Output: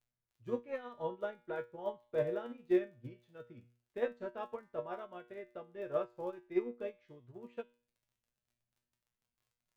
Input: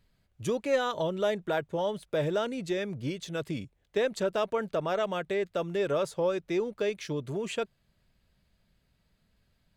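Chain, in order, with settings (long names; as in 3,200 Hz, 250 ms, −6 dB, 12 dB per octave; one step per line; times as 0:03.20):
low-pass filter 1,900 Hz 12 dB per octave
surface crackle 21 per second −39 dBFS
tuned comb filter 120 Hz, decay 0.46 s, harmonics all, mix 90%
expander for the loud parts 2.5 to 1, over −48 dBFS
level +9.5 dB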